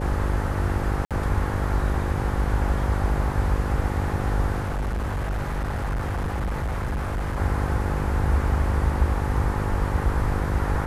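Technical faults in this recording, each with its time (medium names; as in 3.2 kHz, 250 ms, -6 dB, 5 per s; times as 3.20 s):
buzz 50 Hz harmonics 11 -28 dBFS
1.05–1.11 s: dropout 57 ms
4.60–7.38 s: clipped -23 dBFS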